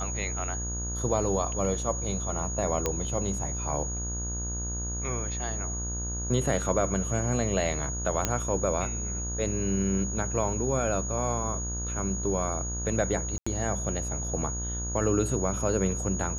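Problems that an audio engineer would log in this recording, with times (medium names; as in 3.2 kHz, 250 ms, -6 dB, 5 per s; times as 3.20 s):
buzz 60 Hz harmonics 29 -34 dBFS
whine 6.7 kHz -34 dBFS
2.86 s: pop -11 dBFS
8.25 s: pop -9 dBFS
13.38–13.46 s: dropout 85 ms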